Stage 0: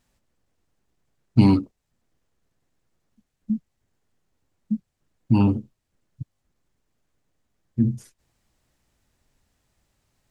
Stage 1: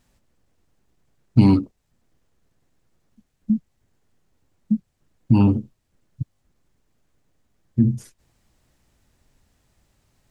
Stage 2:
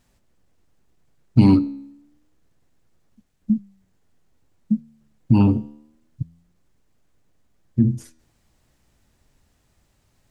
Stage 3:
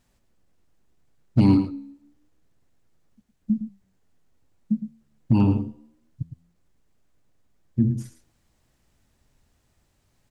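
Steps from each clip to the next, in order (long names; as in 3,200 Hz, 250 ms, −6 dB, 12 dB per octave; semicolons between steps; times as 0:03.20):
low-shelf EQ 450 Hz +3 dB; downward compressor 1.5 to 1, threshold −22 dBFS, peak gain reduction 6 dB; level +4 dB
flanger 0.28 Hz, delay 9.8 ms, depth 4.7 ms, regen +89%; level +5 dB
hard clipping −6 dBFS, distortion −23 dB; single-tap delay 111 ms −10 dB; level −3.5 dB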